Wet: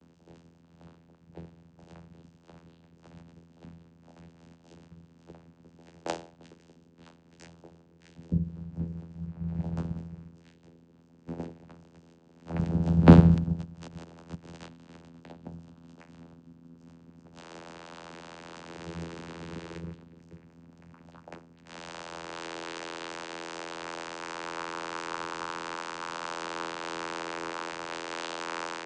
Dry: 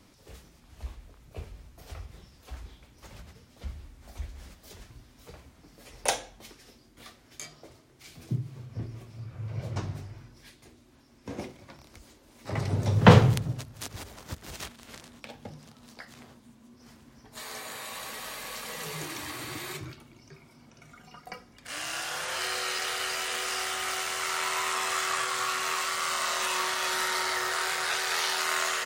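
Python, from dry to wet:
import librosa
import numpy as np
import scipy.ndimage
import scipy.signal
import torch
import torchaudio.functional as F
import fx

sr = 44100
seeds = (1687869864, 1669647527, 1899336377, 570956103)

y = fx.notch(x, sr, hz=1700.0, q=5.6)
y = fx.vocoder(y, sr, bands=8, carrier='saw', carrier_hz=83.8)
y = F.gain(torch.from_numpy(y), 1.0).numpy()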